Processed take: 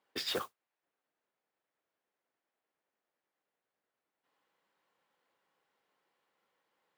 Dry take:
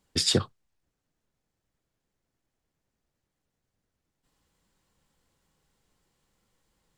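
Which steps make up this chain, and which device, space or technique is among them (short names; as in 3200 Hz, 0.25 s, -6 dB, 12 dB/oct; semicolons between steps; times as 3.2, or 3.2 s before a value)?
carbon microphone (BPF 500–2600 Hz; soft clip -28.5 dBFS, distortion -10 dB; modulation noise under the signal 14 dB)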